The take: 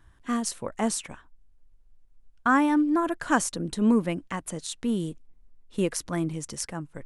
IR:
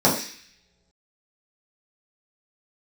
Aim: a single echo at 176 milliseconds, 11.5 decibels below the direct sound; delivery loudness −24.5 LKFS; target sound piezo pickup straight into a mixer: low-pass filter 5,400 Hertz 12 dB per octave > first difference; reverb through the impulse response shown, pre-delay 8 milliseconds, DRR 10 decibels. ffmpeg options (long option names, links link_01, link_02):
-filter_complex "[0:a]aecho=1:1:176:0.266,asplit=2[link_01][link_02];[1:a]atrim=start_sample=2205,adelay=8[link_03];[link_02][link_03]afir=irnorm=-1:irlink=0,volume=-29.5dB[link_04];[link_01][link_04]amix=inputs=2:normalize=0,lowpass=5400,aderivative,volume=18dB"